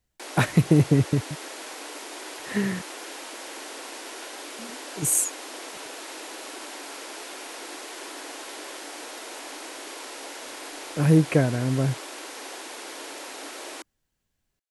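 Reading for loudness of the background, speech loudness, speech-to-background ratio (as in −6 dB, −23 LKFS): −37.0 LKFS, −23.0 LKFS, 14.0 dB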